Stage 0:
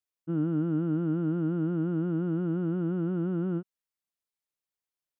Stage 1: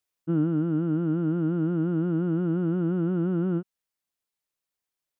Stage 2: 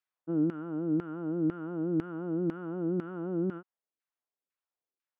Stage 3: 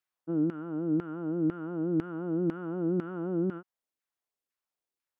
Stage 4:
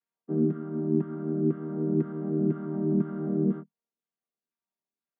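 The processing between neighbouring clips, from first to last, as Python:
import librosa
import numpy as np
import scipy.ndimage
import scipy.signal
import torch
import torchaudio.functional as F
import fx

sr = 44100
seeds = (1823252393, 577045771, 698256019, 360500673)

y1 = fx.rider(x, sr, range_db=10, speed_s=0.5)
y1 = y1 * librosa.db_to_amplitude(3.5)
y2 = fx.filter_lfo_bandpass(y1, sr, shape='saw_down', hz=2.0, low_hz=300.0, high_hz=1800.0, q=1.2)
y3 = fx.rider(y2, sr, range_db=10, speed_s=0.5)
y3 = y3 * librosa.db_to_amplitude(1.0)
y4 = fx.chord_vocoder(y3, sr, chord='major triad', root=51)
y4 = y4 * librosa.db_to_amplitude(4.0)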